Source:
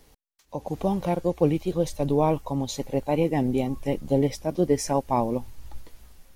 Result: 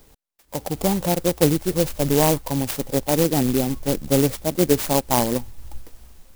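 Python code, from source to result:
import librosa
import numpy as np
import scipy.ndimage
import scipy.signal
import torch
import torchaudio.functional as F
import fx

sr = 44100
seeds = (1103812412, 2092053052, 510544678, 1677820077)

y = fx.peak_eq(x, sr, hz=3200.0, db=4.0, octaves=1.2)
y = fx.clock_jitter(y, sr, seeds[0], jitter_ms=0.13)
y = F.gain(torch.from_numpy(y), 4.0).numpy()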